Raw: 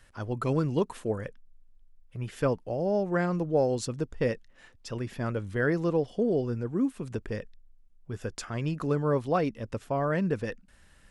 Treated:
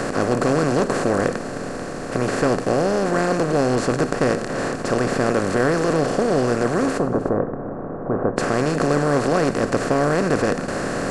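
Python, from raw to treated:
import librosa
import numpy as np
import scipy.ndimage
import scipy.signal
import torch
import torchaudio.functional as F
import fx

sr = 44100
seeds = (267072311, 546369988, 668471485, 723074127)

y = fx.bin_compress(x, sr, power=0.2)
y = fx.lowpass(y, sr, hz=1200.0, slope=24, at=(6.97, 8.36), fade=0.02)
y = y + 10.0 ** (-17.5 / 20.0) * np.pad(y, (int(310 * sr / 1000.0), 0))[:len(y)]
y = fx.rev_gated(y, sr, seeds[0], gate_ms=130, shape='flat', drr_db=12.0)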